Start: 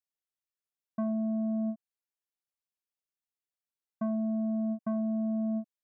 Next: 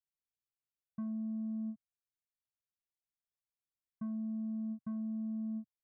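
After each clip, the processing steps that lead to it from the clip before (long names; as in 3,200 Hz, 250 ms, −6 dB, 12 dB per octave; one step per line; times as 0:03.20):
drawn EQ curve 130 Hz 0 dB, 600 Hz −27 dB, 1,100 Hz −15 dB
level +2 dB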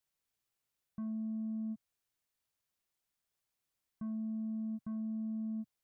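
brickwall limiter −43 dBFS, peak gain reduction 11 dB
level +8.5 dB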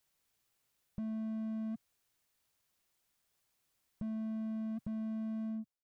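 fade-out on the ending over 0.68 s
slew-rate limiting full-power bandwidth 1.3 Hz
level +7.5 dB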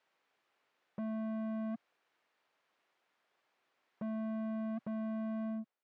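band-pass filter 370–2,200 Hz
level +9.5 dB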